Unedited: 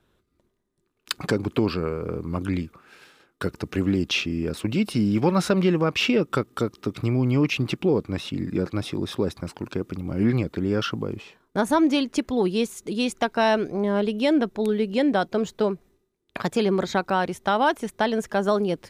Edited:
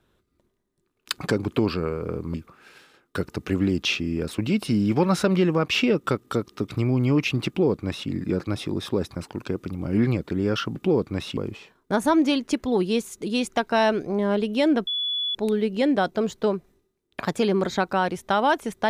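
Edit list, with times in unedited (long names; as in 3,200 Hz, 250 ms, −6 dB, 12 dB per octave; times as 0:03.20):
0:02.34–0:02.60: remove
0:07.74–0:08.35: duplicate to 0:11.02
0:14.52: insert tone 3,420 Hz −23.5 dBFS 0.48 s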